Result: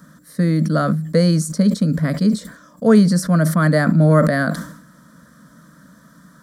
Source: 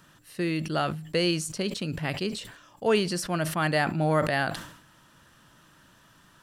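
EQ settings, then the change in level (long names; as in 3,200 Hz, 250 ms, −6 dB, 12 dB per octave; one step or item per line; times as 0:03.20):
high-pass filter 49 Hz
parametric band 170 Hz +12 dB 2.1 octaves
phaser with its sweep stopped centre 550 Hz, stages 8
+7.5 dB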